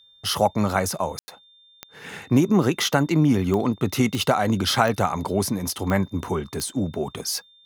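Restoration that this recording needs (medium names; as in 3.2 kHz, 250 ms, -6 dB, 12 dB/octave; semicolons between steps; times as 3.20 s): de-click; band-stop 3.6 kHz, Q 30; room tone fill 1.19–1.28 s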